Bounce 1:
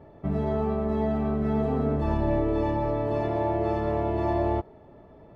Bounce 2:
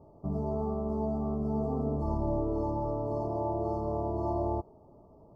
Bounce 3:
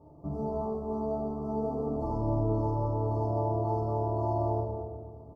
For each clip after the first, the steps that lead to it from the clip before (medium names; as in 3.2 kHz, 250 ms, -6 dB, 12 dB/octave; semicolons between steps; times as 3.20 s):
Chebyshev band-stop 1.2–4.6 kHz, order 5; trim -5 dB
on a send: delay 222 ms -10.5 dB; on the sum: FDN reverb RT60 1.7 s, low-frequency decay 1.4×, high-frequency decay 0.45×, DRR -2 dB; trim -3 dB